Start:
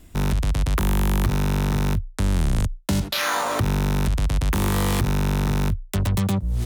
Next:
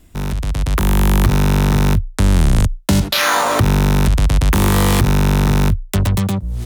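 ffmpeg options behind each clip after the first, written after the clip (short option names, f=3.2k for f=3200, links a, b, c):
-af "dynaudnorm=f=210:g=7:m=10dB"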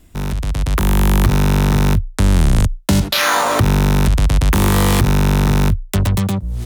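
-af anull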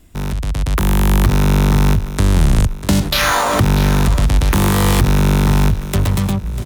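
-af "aecho=1:1:645|1290|1935|2580:0.211|0.0972|0.0447|0.0206"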